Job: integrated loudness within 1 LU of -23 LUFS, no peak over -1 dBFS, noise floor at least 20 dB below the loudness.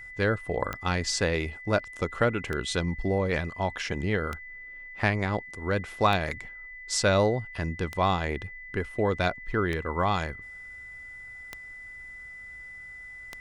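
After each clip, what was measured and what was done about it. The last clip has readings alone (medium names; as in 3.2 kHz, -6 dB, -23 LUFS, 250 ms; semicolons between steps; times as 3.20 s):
clicks found 8; steady tone 2 kHz; tone level -41 dBFS; loudness -28.5 LUFS; peak level -9.0 dBFS; loudness target -23.0 LUFS
-> de-click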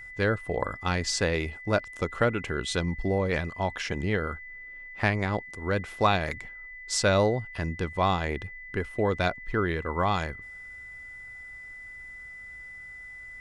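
clicks found 0; steady tone 2 kHz; tone level -41 dBFS
-> band-stop 2 kHz, Q 30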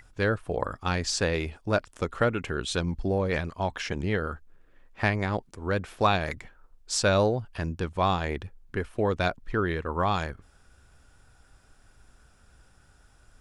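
steady tone not found; loudness -28.5 LUFS; peak level -9.0 dBFS; loudness target -23.0 LUFS
-> trim +5.5 dB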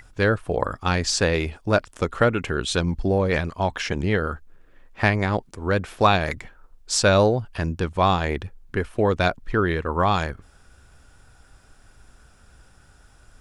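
loudness -23.0 LUFS; peak level -3.5 dBFS; noise floor -54 dBFS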